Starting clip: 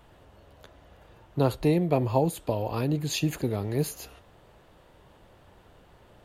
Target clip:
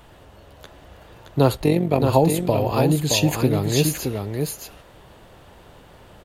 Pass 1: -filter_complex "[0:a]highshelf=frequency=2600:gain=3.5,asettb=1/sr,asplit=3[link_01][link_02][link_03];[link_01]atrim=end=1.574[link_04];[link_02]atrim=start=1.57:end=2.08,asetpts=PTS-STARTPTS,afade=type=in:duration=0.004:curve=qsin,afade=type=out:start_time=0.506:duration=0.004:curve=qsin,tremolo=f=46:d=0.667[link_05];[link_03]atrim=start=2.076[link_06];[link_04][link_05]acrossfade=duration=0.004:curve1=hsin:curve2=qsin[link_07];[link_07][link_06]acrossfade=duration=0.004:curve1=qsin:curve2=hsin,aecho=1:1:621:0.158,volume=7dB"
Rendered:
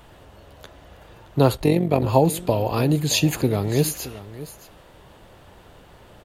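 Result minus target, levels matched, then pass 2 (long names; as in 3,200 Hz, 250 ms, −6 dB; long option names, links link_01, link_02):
echo-to-direct −11 dB
-filter_complex "[0:a]highshelf=frequency=2600:gain=3.5,asettb=1/sr,asplit=3[link_01][link_02][link_03];[link_01]atrim=end=1.574[link_04];[link_02]atrim=start=1.57:end=2.08,asetpts=PTS-STARTPTS,afade=type=in:duration=0.004:curve=qsin,afade=type=out:start_time=0.506:duration=0.004:curve=qsin,tremolo=f=46:d=0.667[link_05];[link_03]atrim=start=2.076[link_06];[link_04][link_05]acrossfade=duration=0.004:curve1=hsin:curve2=qsin[link_07];[link_07][link_06]acrossfade=duration=0.004:curve1=qsin:curve2=hsin,aecho=1:1:621:0.562,volume=7dB"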